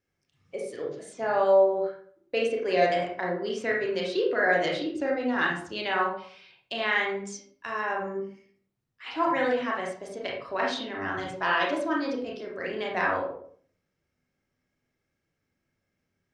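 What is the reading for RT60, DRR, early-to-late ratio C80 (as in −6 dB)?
0.55 s, −2.5 dB, 8.0 dB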